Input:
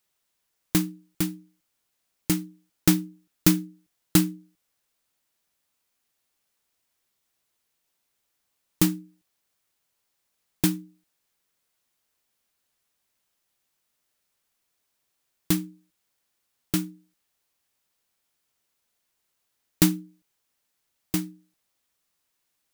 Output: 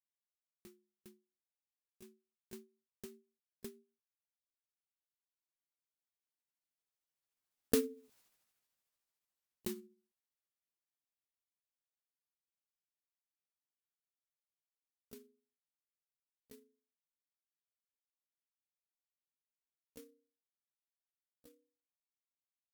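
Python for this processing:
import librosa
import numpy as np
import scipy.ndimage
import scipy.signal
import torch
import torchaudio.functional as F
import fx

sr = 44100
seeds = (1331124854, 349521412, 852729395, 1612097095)

y = fx.pitch_glide(x, sr, semitones=10.5, runs='starting unshifted')
y = fx.doppler_pass(y, sr, speed_mps=42, closest_m=3.5, pass_at_s=8.16)
y = F.gain(torch.from_numpy(y), 7.5).numpy()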